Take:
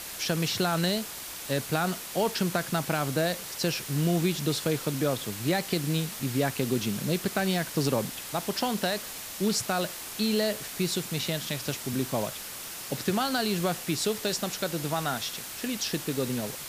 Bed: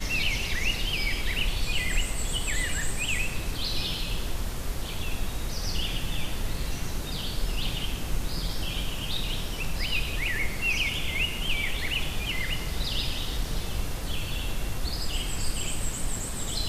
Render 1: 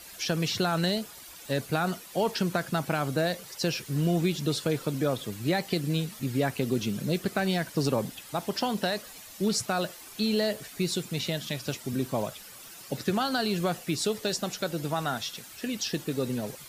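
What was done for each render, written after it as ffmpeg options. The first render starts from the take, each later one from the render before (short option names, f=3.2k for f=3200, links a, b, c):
-af "afftdn=nr=11:nf=-40"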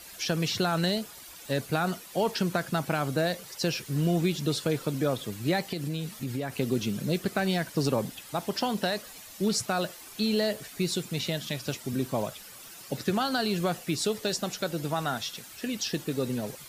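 -filter_complex "[0:a]asettb=1/sr,asplit=3[a][b][c];[a]atrim=end=5.684[d];[b]atrim=start=5.68:end=6.58,asetpts=PTS-STARTPTS,afade=t=in:d=0.004:c=qsin,afade=t=out:st=0.896:d=0.004:c=qsin,acompressor=threshold=-28dB:ratio=4:attack=3.2:release=140:knee=1:detection=peak[e];[c]atrim=start=6.576[f];[d][e]acrossfade=d=0.004:c1=hsin:c2=qsin[g];[g][f]acrossfade=d=0.004:c1=qsin:c2=hsin"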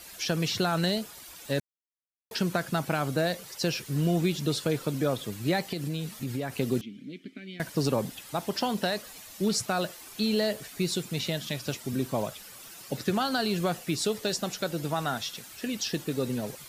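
-filter_complex "[0:a]asettb=1/sr,asplit=3[a][b][c];[a]atrim=end=6.814[d];[b]atrim=start=6.81:end=7.6,asetpts=PTS-STARTPTS,afade=t=in:d=0.004:c=qsin,afade=t=out:st=0.786:d=0.004:c=qsin,asplit=3[e][f][g];[e]bandpass=f=270:t=q:w=8,volume=0dB[h];[f]bandpass=f=2.29k:t=q:w=8,volume=-6dB[i];[g]bandpass=f=3.01k:t=q:w=8,volume=-9dB[j];[h][i][j]amix=inputs=3:normalize=0[k];[c]atrim=start=7.596[l];[d][k]acrossfade=d=0.004:c1=hsin:c2=qsin[m];[m][l]acrossfade=d=0.004:c1=qsin:c2=hsin,asplit=3[n][o][p];[n]atrim=end=1.6,asetpts=PTS-STARTPTS,afade=t=out:st=1.596:d=0.004:c=hsin[q];[o]atrim=start=1.6:end=2.31,asetpts=PTS-STARTPTS,volume=0[r];[p]atrim=start=2.31,asetpts=PTS-STARTPTS,afade=t=in:d=0.004:c=hsin[s];[q][r][s]concat=n=3:v=0:a=1"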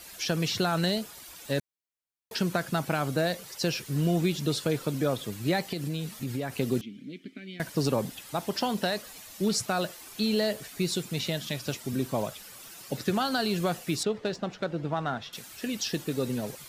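-filter_complex "[0:a]asettb=1/sr,asplit=3[a][b][c];[a]atrim=end=14.034[d];[b]atrim=start=14.03:end=15.33,asetpts=PTS-STARTPTS,afade=t=in:d=0.004:c=qsin,afade=t=out:st=1.296:d=0.004:c=qsin,adynamicsmooth=sensitivity=1:basefreq=2.4k[e];[c]atrim=start=15.326[f];[d][e]acrossfade=d=0.004:c1=hsin:c2=qsin[g];[g][f]acrossfade=d=0.004:c1=qsin:c2=hsin"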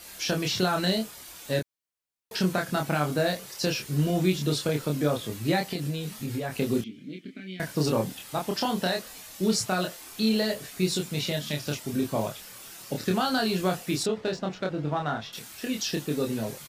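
-filter_complex "[0:a]asplit=2[a][b];[b]adelay=27,volume=-3dB[c];[a][c]amix=inputs=2:normalize=0"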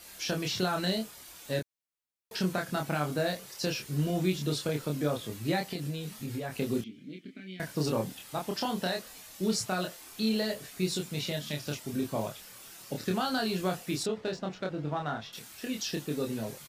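-af "volume=-4.5dB"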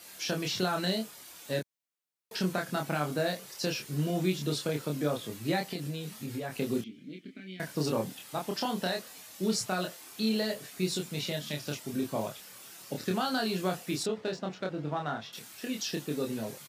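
-af "highpass=120"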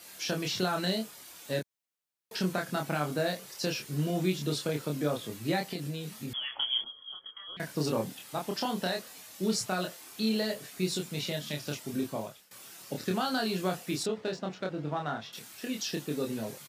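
-filter_complex "[0:a]asettb=1/sr,asplit=3[a][b][c];[a]atrim=end=6.334[d];[b]atrim=start=6.33:end=7.57,asetpts=PTS-STARTPTS,afade=t=in:d=0.004:c=qsin,afade=t=out:st=1.236:d=0.004:c=qsin,lowpass=f=3k:t=q:w=0.5098,lowpass=f=3k:t=q:w=0.6013,lowpass=f=3k:t=q:w=0.9,lowpass=f=3k:t=q:w=2.563,afreqshift=-3500[e];[c]atrim=start=7.566[f];[d][e]acrossfade=d=0.004:c1=hsin:c2=qsin[g];[g][f]acrossfade=d=0.004:c1=qsin:c2=hsin,asplit=2[h][i];[h]atrim=end=12.51,asetpts=PTS-STARTPTS,afade=t=out:st=12.01:d=0.5:silence=0.125893[j];[i]atrim=start=12.51,asetpts=PTS-STARTPTS,afade=t=in:d=0.004:c=hsin:silence=0.125893[k];[j][k]concat=n=2:v=0:a=1"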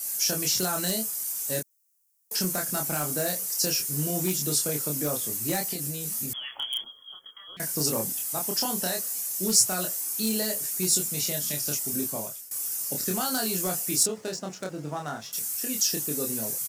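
-af "volume=21.5dB,asoftclip=hard,volume=-21.5dB,aexciter=amount=4.1:drive=9.3:freq=5.4k"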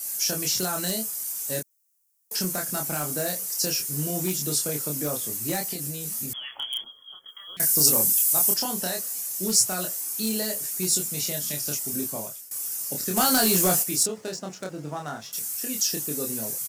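-filter_complex "[0:a]asettb=1/sr,asplit=3[a][b][c];[a]atrim=end=7.284[d];[b]atrim=start=7.28:end=8.54,asetpts=PTS-STARTPTS,afade=t=in:d=0.004:c=qsin,afade=t=out:st=1.256:d=0.004:c=qsin,highshelf=f=5k:g=12[e];[c]atrim=start=8.536[f];[d][e]acrossfade=d=0.004:c1=hsin:c2=qsin[g];[g][f]acrossfade=d=0.004:c1=qsin:c2=hsin,asplit=3[h][i][j];[h]afade=t=out:st=13.16:d=0.02[k];[i]aeval=exprs='0.188*sin(PI/2*1.78*val(0)/0.188)':c=same,afade=t=in:st=13.16:d=0.02,afade=t=out:st=13.82:d=0.02[l];[j]afade=t=in:st=13.82:d=0.02[m];[k][l][m]amix=inputs=3:normalize=0"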